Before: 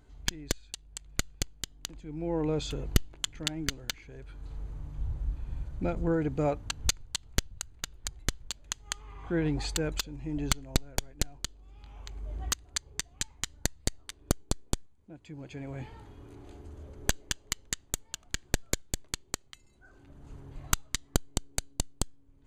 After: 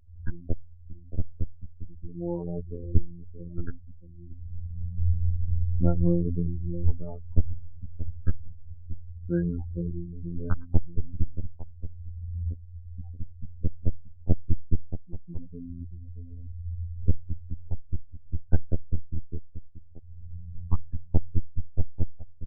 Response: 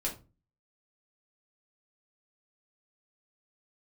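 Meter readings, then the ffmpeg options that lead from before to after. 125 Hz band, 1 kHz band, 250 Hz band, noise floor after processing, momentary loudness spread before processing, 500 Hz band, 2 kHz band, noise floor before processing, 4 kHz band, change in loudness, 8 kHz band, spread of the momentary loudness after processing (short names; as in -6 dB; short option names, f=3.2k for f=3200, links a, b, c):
+8.5 dB, -9.0 dB, +2.5 dB, -45 dBFS, 16 LU, -2.5 dB, -16.5 dB, -60 dBFS, under -40 dB, +1.5 dB, under -40 dB, 15 LU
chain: -filter_complex "[0:a]aemphasis=mode=reproduction:type=bsi,afftfilt=real='re*gte(hypot(re,im),0.0501)':imag='im*gte(hypot(re,im),0.0501)':win_size=1024:overlap=0.75,highshelf=f=7.1k:t=q:w=1.5:g=-7,acrossover=split=290|960|4900[a][b][c][d];[a]dynaudnorm=f=370:g=9:m=10dB[e];[e][b][c][d]amix=inputs=4:normalize=0,afftfilt=real='hypot(re,im)*cos(PI*b)':imag='0':win_size=2048:overlap=0.75,aecho=1:1:629:0.266,afftfilt=real='re*lt(b*sr/1024,360*pow(1700/360,0.5+0.5*sin(2*PI*0.87*pts/sr)))':imag='im*lt(b*sr/1024,360*pow(1700/360,0.5+0.5*sin(2*PI*0.87*pts/sr)))':win_size=1024:overlap=0.75"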